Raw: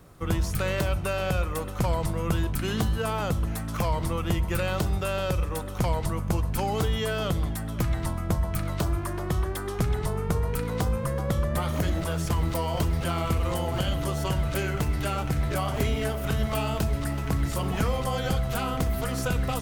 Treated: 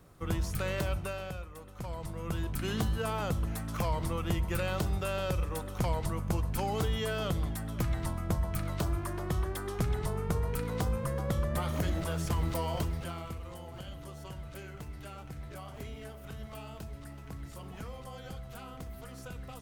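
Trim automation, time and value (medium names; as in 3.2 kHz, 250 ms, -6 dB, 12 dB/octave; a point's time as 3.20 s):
0.97 s -6 dB
1.52 s -18 dB
2.67 s -5 dB
12.71 s -5 dB
13.44 s -17 dB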